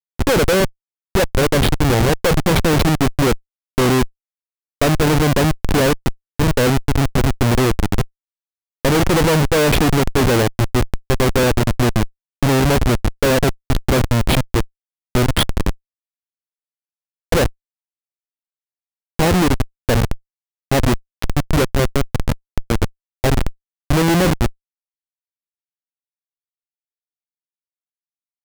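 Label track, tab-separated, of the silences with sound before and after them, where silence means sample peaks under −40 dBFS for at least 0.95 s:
15.750000	17.320000	silence
17.510000	19.190000	silence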